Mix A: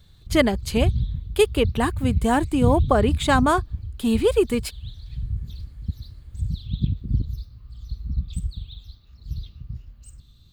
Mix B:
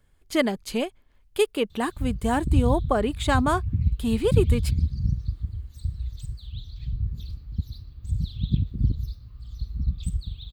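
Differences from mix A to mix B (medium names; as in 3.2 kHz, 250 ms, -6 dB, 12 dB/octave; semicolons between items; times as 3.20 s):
speech -4.0 dB; background: entry +1.70 s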